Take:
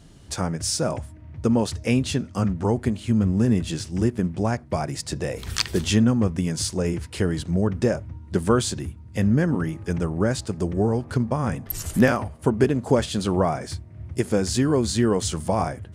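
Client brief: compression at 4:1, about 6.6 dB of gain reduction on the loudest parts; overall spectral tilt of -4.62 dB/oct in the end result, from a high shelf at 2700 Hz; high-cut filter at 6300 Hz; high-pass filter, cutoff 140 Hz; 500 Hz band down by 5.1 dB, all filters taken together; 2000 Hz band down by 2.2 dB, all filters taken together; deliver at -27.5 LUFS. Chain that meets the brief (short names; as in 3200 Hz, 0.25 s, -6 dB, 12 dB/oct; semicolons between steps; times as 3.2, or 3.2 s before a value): HPF 140 Hz; LPF 6300 Hz; bell 500 Hz -6.5 dB; bell 2000 Hz -4.5 dB; high shelf 2700 Hz +5 dB; compressor 4:1, threshold -24 dBFS; gain +2.5 dB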